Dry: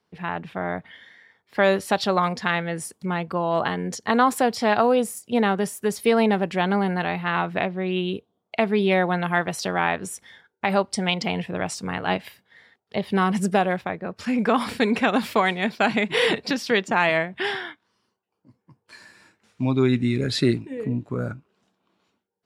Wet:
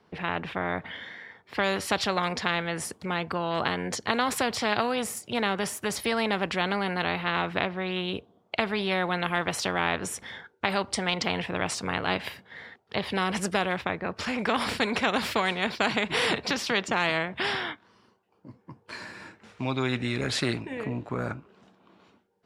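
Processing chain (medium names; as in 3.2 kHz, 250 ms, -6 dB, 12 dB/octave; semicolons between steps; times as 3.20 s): low-pass 2.3 kHz 6 dB/octave; spectrum-flattening compressor 2:1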